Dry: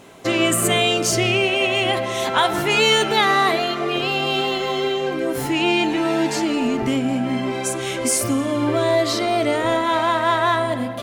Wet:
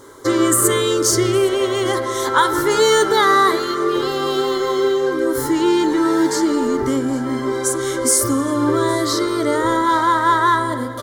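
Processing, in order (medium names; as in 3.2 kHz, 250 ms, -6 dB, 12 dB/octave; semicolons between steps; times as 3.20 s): static phaser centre 700 Hz, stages 6; delay 813 ms -21 dB; trim +6 dB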